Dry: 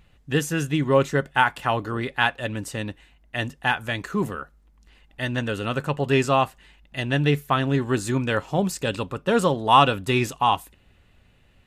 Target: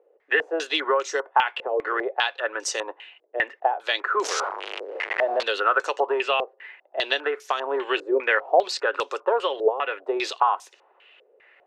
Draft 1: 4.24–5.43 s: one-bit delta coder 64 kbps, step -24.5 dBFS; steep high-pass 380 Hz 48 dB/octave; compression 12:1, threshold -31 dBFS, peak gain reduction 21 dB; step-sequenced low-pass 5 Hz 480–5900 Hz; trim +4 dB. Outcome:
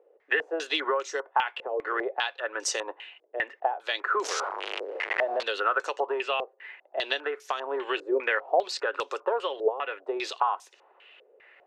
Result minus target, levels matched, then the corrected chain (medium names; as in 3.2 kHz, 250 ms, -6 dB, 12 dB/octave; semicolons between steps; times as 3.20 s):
compression: peak gain reduction +5.5 dB
4.24–5.43 s: one-bit delta coder 64 kbps, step -24.5 dBFS; steep high-pass 380 Hz 48 dB/octave; compression 12:1, threshold -25 dBFS, peak gain reduction 15.5 dB; step-sequenced low-pass 5 Hz 480–5900 Hz; trim +4 dB